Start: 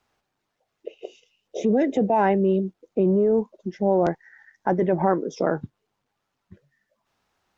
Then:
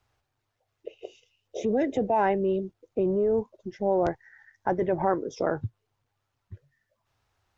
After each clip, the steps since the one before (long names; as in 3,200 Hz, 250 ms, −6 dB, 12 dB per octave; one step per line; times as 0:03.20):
low shelf with overshoot 140 Hz +7.5 dB, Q 3
level −3 dB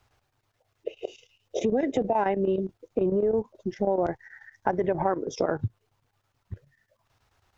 square-wave tremolo 9.3 Hz, depth 65%, duty 80%
downward compressor 3 to 1, threshold −29 dBFS, peak gain reduction 8.5 dB
level +6.5 dB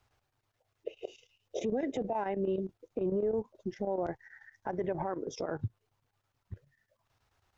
brickwall limiter −17.5 dBFS, peak gain reduction 8.5 dB
level −6 dB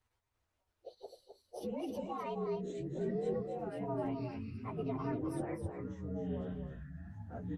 partials spread apart or drawn together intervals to 117%
delay with pitch and tempo change per echo 337 ms, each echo −7 semitones, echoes 3
single-tap delay 259 ms −7 dB
level −4.5 dB